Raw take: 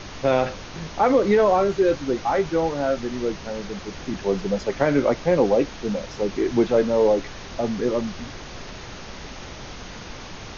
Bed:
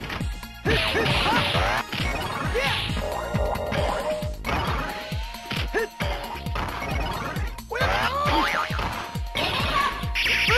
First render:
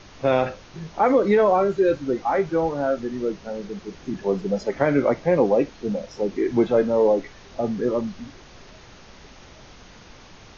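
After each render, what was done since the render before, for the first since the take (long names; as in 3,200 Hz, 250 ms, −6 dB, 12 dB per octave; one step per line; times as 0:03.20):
noise reduction from a noise print 9 dB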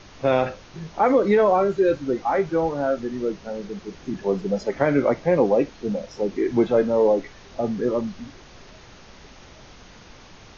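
no processing that can be heard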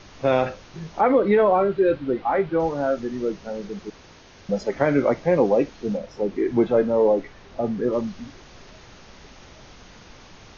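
0:01.01–0:02.60: low-pass filter 3,900 Hz 24 dB per octave
0:03.90–0:04.49: fill with room tone
0:05.97–0:07.93: high-shelf EQ 5,000 Hz −11 dB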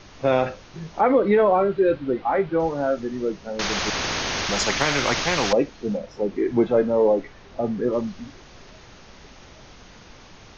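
0:03.59–0:05.53: every bin compressed towards the loudest bin 4 to 1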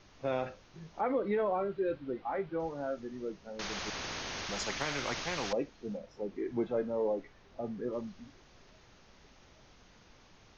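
level −13.5 dB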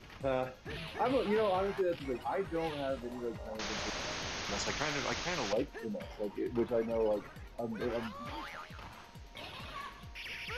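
mix in bed −21.5 dB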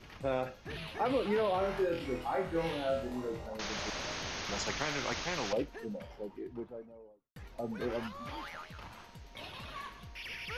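0:01.59–0:03.46: flutter between parallel walls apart 4.1 metres, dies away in 0.39 s
0:05.45–0:07.36: fade out and dull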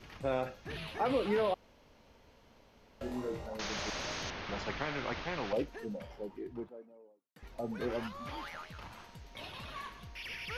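0:01.54–0:03.01: fill with room tone
0:04.30–0:05.54: high-frequency loss of the air 240 metres
0:06.69–0:07.43: four-pole ladder high-pass 170 Hz, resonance 20%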